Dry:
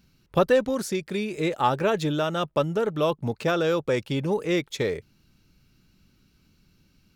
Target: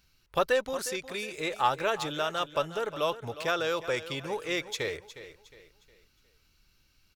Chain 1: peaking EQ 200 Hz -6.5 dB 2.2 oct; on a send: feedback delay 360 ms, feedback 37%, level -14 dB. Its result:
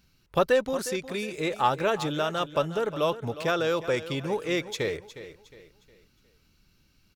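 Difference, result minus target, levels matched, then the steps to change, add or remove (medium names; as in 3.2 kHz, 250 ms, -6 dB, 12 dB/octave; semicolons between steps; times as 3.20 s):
250 Hz band +4.5 dB
change: peaking EQ 200 Hz -16.5 dB 2.2 oct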